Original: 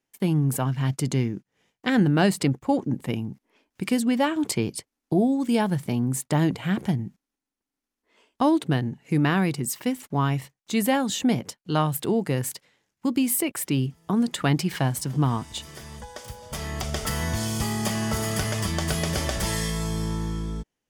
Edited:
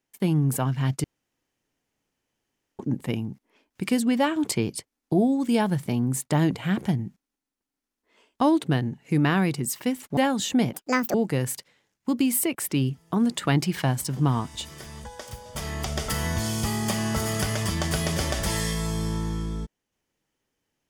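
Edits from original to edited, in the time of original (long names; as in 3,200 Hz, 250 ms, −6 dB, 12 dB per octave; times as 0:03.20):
0:01.04–0:02.79: fill with room tone
0:10.17–0:10.87: remove
0:11.43–0:12.11: play speed 165%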